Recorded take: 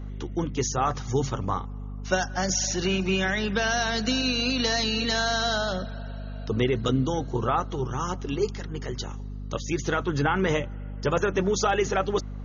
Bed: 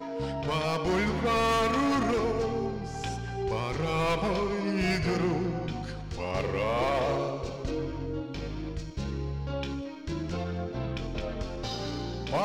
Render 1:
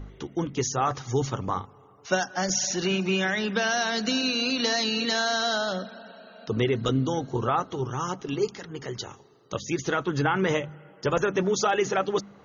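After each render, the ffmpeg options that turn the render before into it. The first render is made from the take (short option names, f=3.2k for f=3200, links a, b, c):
-af "bandreject=f=50:t=h:w=4,bandreject=f=100:t=h:w=4,bandreject=f=150:t=h:w=4,bandreject=f=200:t=h:w=4,bandreject=f=250:t=h:w=4"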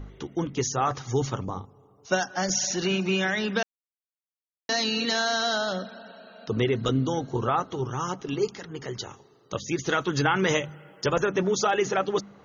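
-filter_complex "[0:a]asplit=3[a][b][c];[a]afade=t=out:st=1.43:d=0.02[d];[b]equalizer=f=1.9k:w=0.73:g=-14.5,afade=t=in:st=1.43:d=0.02,afade=t=out:st=2.1:d=0.02[e];[c]afade=t=in:st=2.1:d=0.02[f];[d][e][f]amix=inputs=3:normalize=0,asettb=1/sr,asplit=3[g][h][i];[g]atrim=end=9.894[j];[h]atrim=start=9.89:end=11.1,asetpts=PTS-STARTPTS,afade=t=in:d=0.004:c=qsin,afade=t=out:st=1.206:d=0.004:c=qsin,highshelf=f=3.1k:g=10.5[k];[i]atrim=start=11.096[l];[j][k]acrossfade=d=0.004:c1=hsin:c2=qsin[m];[m][l]acrossfade=d=0.004:c1=qsin:c2=hsin,asplit=3[n][o][p];[n]atrim=end=3.63,asetpts=PTS-STARTPTS,afade=t=out:st=3.626:d=0.004:c=hsin[q];[o]atrim=start=3.63:end=4.69,asetpts=PTS-STARTPTS,volume=0[r];[p]atrim=start=4.69,asetpts=PTS-STARTPTS,afade=t=in:d=0.004:c=hsin[s];[q][r][s]concat=n=3:v=0:a=1"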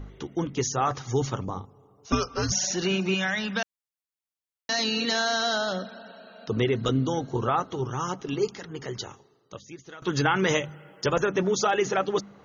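-filter_complex "[0:a]asettb=1/sr,asplit=3[a][b][c];[a]atrim=end=2.124[d];[b]atrim=start=2.12:end=2.52,asetpts=PTS-STARTPTS,afade=t=in:d=0.004:c=qsin,afade=t=out:st=0.396:d=0.004:c=qsin,afreqshift=-310[e];[c]atrim=start=2.516[f];[d][e]acrossfade=d=0.004:c1=hsin:c2=qsin[g];[g][f]acrossfade=d=0.004:c1=qsin:c2=hsin,asettb=1/sr,asplit=3[h][i][j];[h]atrim=end=3.144[k];[i]atrim=start=3.14:end=4.79,asetpts=PTS-STARTPTS,afade=t=in:d=0.004:c=qsin,afade=t=out:st=1.646:d=0.004:c=qsin,equalizer=f=380:t=o:w=0.77:g=-11[l];[j]atrim=start=4.786[m];[k][l]acrossfade=d=0.004:c1=hsin:c2=qsin[n];[n][m]acrossfade=d=0.004:c1=qsin:c2=hsin,asplit=2[o][p];[o]atrim=end=10.02,asetpts=PTS-STARTPTS,afade=t=out:st=9.05:d=0.97:c=qua:silence=0.105925[q];[p]atrim=start=10.02,asetpts=PTS-STARTPTS,afade=t=in:d=0.004:c=hsin:silence=0.105925[r];[q][r]concat=n=2:v=0:a=1"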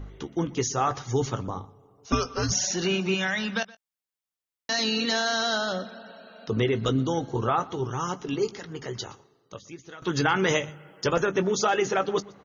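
-filter_complex "[0:a]asplit=2[a][b];[b]adelay=18,volume=-13dB[c];[a][c]amix=inputs=2:normalize=0,aecho=1:1:121:0.0794"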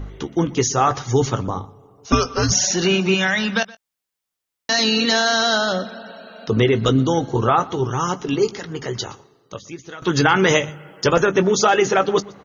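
-af "volume=8dB,alimiter=limit=-3dB:level=0:latency=1"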